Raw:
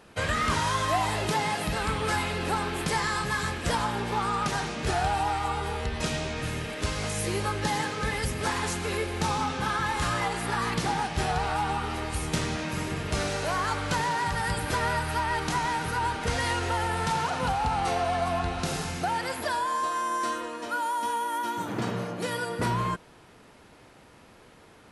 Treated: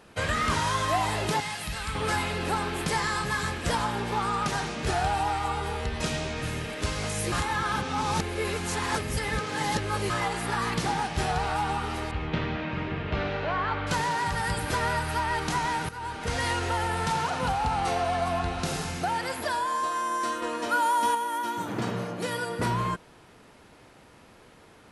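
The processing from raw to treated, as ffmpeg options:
ffmpeg -i in.wav -filter_complex "[0:a]asettb=1/sr,asplit=3[link_01][link_02][link_03];[link_01]atrim=end=1.404[link_04];[link_02]atrim=start=1.4:end=1.95,asetpts=PTS-STARTPTS,afade=type=in:duration=0.004:curve=qsin,afade=type=out:start_time=0.546:duration=0.004:curve=qsin,equalizer=frequency=390:width=0.41:gain=-12.5[link_05];[link_03]atrim=start=1.946[link_06];[link_04][link_05]acrossfade=duration=0.004:curve1=hsin:curve2=qsin[link_07];[link_07][link_06]acrossfade=duration=0.004:curve1=qsin:curve2=hsin,asettb=1/sr,asplit=3[link_08][link_09][link_10];[link_08]atrim=end=12.114[link_11];[link_09]atrim=start=12.11:end=13.87,asetpts=PTS-STARTPTS,afade=type=in:duration=0.004:curve=qsin,afade=type=out:start_time=1.756:duration=0.004:curve=qsin,lowpass=frequency=3300:width=0.5412,lowpass=frequency=3300:width=1.3066[link_12];[link_10]atrim=start=13.866[link_13];[link_11][link_12]acrossfade=duration=0.004:curve1=hsin:curve2=qsin[link_14];[link_14][link_13]acrossfade=duration=0.004:curve1=qsin:curve2=hsin,asettb=1/sr,asplit=3[link_15][link_16][link_17];[link_15]atrim=end=20.424[link_18];[link_16]atrim=start=20.42:end=21.15,asetpts=PTS-STARTPTS,afade=type=in:duration=0.004:curve=qsin,afade=type=out:start_time=0.726:duration=0.004:curve=qsin,acontrast=25[link_19];[link_17]atrim=start=21.146[link_20];[link_18][link_19]acrossfade=duration=0.004:curve1=hsin:curve2=qsin[link_21];[link_21][link_20]acrossfade=duration=0.004:curve1=qsin:curve2=hsin,asplit=4[link_22][link_23][link_24][link_25];[link_22]atrim=end=7.322[link_26];[link_23]atrim=start=7.318:end=10.102,asetpts=PTS-STARTPTS,areverse[link_27];[link_24]atrim=start=10.098:end=15.89,asetpts=PTS-STARTPTS,afade=type=out:start_time=5.788:duration=0.004:curve=hsin:silence=0.211349[link_28];[link_25]atrim=start=15.89,asetpts=PTS-STARTPTS,afade=type=in:duration=0.54:silence=0.211349[link_29];[link_26][link_27]acrossfade=duration=0.004:curve1=hsin:curve2=hsin[link_30];[link_28][link_29]concat=n=2:v=0:a=1[link_31];[link_30][link_31]acrossfade=duration=0.004:curve1=hsin:curve2=hsin" out.wav

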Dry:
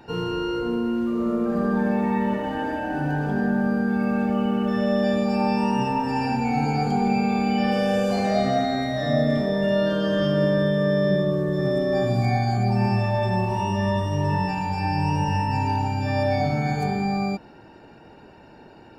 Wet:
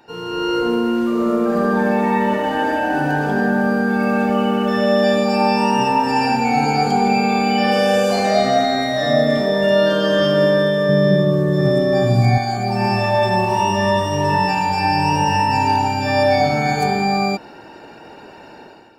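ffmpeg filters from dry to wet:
ffmpeg -i in.wav -filter_complex "[0:a]asettb=1/sr,asplit=3[link_01][link_02][link_03];[link_01]atrim=end=10.894[link_04];[link_02]atrim=start=10.89:end=12.38,asetpts=PTS-STARTPTS,afade=type=in:duration=0.004:curve=qsin,afade=type=out:start_time=1.486:duration=0.004:curve=qsin,equalizer=frequency=120:width=0.81:gain=12.5[link_05];[link_03]atrim=start=12.376[link_06];[link_04][link_05]acrossfade=duration=0.004:curve1=hsin:curve2=qsin[link_07];[link_07][link_06]acrossfade=duration=0.004:curve1=qsin:curve2=hsin,lowshelf=frequency=200:gain=-9.5,dynaudnorm=framelen=110:gausssize=7:maxgain=11.5dB,bass=frequency=250:gain=-3,treble=frequency=4000:gain=3,volume=-1dB" out.wav

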